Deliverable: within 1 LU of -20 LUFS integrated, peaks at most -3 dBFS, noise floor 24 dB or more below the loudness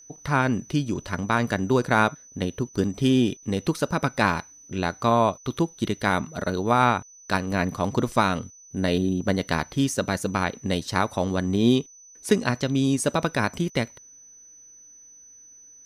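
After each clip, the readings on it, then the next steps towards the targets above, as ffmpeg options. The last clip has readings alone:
steady tone 6 kHz; tone level -47 dBFS; loudness -24.5 LUFS; peak level -5.0 dBFS; loudness target -20.0 LUFS
-> -af "bandreject=f=6000:w=30"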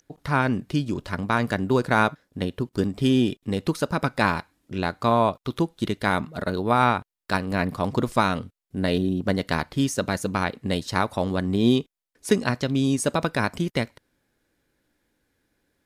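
steady tone not found; loudness -24.5 LUFS; peak level -5.0 dBFS; loudness target -20.0 LUFS
-> -af "volume=1.68,alimiter=limit=0.708:level=0:latency=1"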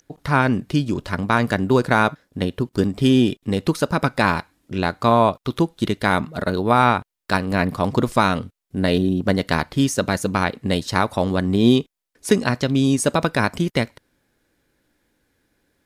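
loudness -20.5 LUFS; peak level -3.0 dBFS; noise floor -77 dBFS

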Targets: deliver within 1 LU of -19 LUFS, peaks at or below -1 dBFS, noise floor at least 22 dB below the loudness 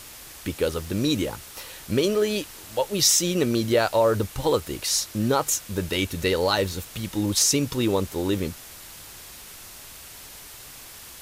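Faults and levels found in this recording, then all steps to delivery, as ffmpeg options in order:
noise floor -43 dBFS; noise floor target -46 dBFS; loudness -23.5 LUFS; peak level -7.5 dBFS; loudness target -19.0 LUFS
-> -af "afftdn=nr=6:nf=-43"
-af "volume=1.68"

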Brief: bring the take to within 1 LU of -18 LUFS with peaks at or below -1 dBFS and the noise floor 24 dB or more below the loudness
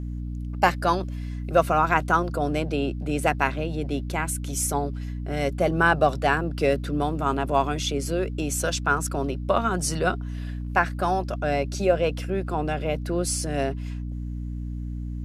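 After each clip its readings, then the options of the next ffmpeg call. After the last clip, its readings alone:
hum 60 Hz; highest harmonic 300 Hz; hum level -29 dBFS; loudness -25.5 LUFS; peak level -4.0 dBFS; loudness target -18.0 LUFS
-> -af "bandreject=f=60:t=h:w=4,bandreject=f=120:t=h:w=4,bandreject=f=180:t=h:w=4,bandreject=f=240:t=h:w=4,bandreject=f=300:t=h:w=4"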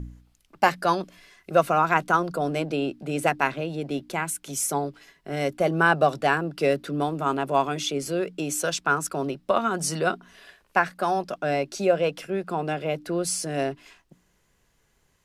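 hum not found; loudness -25.5 LUFS; peak level -4.0 dBFS; loudness target -18.0 LUFS
-> -af "volume=2.37,alimiter=limit=0.891:level=0:latency=1"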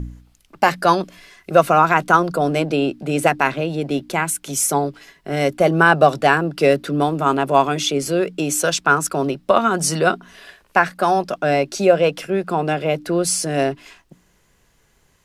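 loudness -18.5 LUFS; peak level -1.0 dBFS; noise floor -60 dBFS

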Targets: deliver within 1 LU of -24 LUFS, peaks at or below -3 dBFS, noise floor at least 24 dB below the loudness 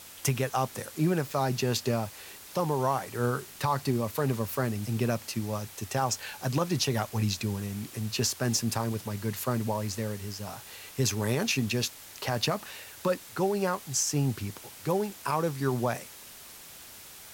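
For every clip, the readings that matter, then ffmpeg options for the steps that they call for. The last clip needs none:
noise floor -48 dBFS; noise floor target -54 dBFS; loudness -30.0 LUFS; peak level -13.5 dBFS; loudness target -24.0 LUFS
-> -af "afftdn=nr=6:nf=-48"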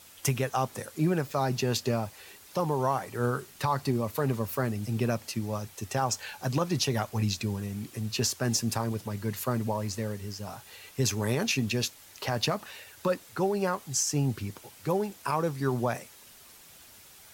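noise floor -53 dBFS; noise floor target -55 dBFS
-> -af "afftdn=nr=6:nf=-53"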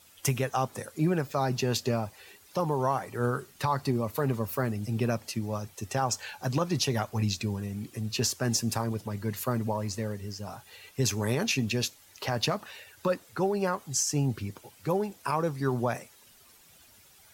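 noise floor -57 dBFS; loudness -30.5 LUFS; peak level -14.0 dBFS; loudness target -24.0 LUFS
-> -af "volume=2.11"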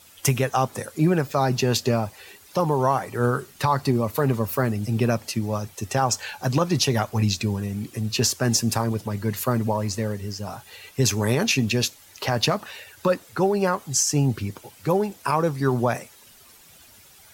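loudness -24.0 LUFS; peak level -7.5 dBFS; noise floor -51 dBFS

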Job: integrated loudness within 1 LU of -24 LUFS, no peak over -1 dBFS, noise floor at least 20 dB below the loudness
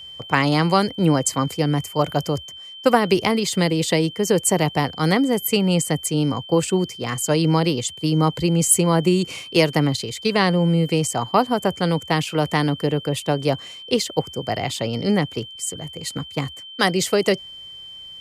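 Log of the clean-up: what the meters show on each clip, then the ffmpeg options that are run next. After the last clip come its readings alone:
steady tone 3.1 kHz; tone level -36 dBFS; loudness -20.5 LUFS; peak level -3.5 dBFS; loudness target -24.0 LUFS
-> -af "bandreject=f=3100:w=30"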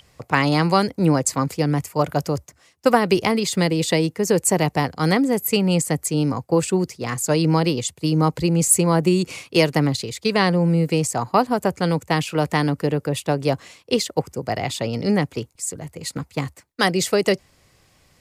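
steady tone not found; loudness -21.0 LUFS; peak level -3.5 dBFS; loudness target -24.0 LUFS
-> -af "volume=0.708"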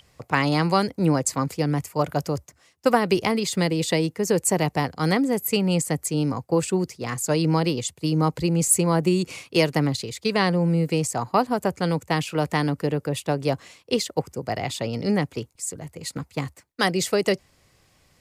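loudness -24.0 LUFS; peak level -6.5 dBFS; noise floor -62 dBFS

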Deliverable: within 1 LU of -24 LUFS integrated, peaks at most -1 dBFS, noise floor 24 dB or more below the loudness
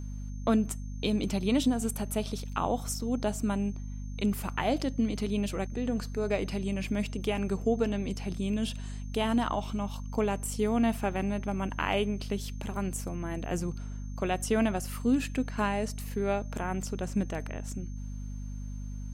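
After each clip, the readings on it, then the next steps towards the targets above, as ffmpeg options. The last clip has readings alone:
hum 50 Hz; highest harmonic 250 Hz; hum level -35 dBFS; steady tone 6.3 kHz; tone level -58 dBFS; loudness -31.5 LUFS; peak level -13.0 dBFS; loudness target -24.0 LUFS
-> -af "bandreject=f=50:t=h:w=6,bandreject=f=100:t=h:w=6,bandreject=f=150:t=h:w=6,bandreject=f=200:t=h:w=6,bandreject=f=250:t=h:w=6"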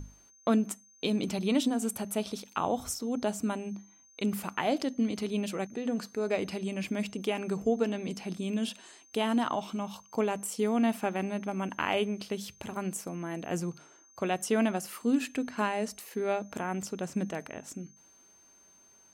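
hum not found; steady tone 6.3 kHz; tone level -58 dBFS
-> -af "bandreject=f=6300:w=30"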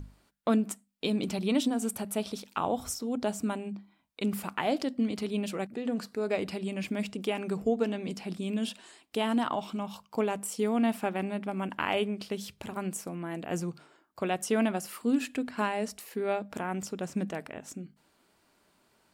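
steady tone not found; loudness -32.0 LUFS; peak level -14.0 dBFS; loudness target -24.0 LUFS
-> -af "volume=2.51"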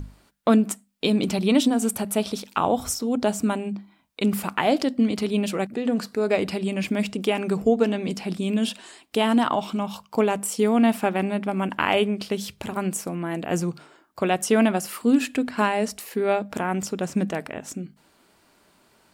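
loudness -24.0 LUFS; peak level -6.0 dBFS; noise floor -61 dBFS

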